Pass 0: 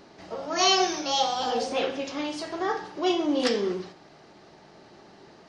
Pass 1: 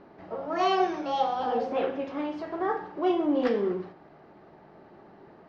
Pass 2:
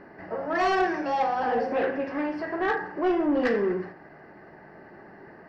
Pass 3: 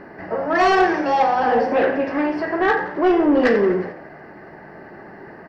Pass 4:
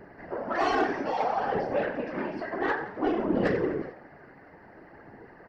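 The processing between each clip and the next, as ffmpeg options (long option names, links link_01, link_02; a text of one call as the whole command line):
ffmpeg -i in.wav -af "lowpass=1600,bandreject=frequency=60:width_type=h:width=6,bandreject=frequency=120:width_type=h:width=6" out.wav
ffmpeg -i in.wav -af "superequalizer=11b=2.82:13b=0.316:15b=0.316,asoftclip=type=tanh:threshold=-21dB,volume=3.5dB" out.wav
ffmpeg -i in.wav -filter_complex "[0:a]asplit=6[link_01][link_02][link_03][link_04][link_05][link_06];[link_02]adelay=88,afreqshift=70,volume=-17dB[link_07];[link_03]adelay=176,afreqshift=140,volume=-22.5dB[link_08];[link_04]adelay=264,afreqshift=210,volume=-28dB[link_09];[link_05]adelay=352,afreqshift=280,volume=-33.5dB[link_10];[link_06]adelay=440,afreqshift=350,volume=-39.1dB[link_11];[link_01][link_07][link_08][link_09][link_10][link_11]amix=inputs=6:normalize=0,volume=8dB" out.wav
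ffmpeg -i in.wav -af "afftfilt=real='hypot(re,im)*cos(2*PI*random(0))':imag='hypot(re,im)*sin(2*PI*random(1))':win_size=512:overlap=0.75,flanger=delay=0.1:depth=7.5:regen=74:speed=0.58:shape=sinusoidal" out.wav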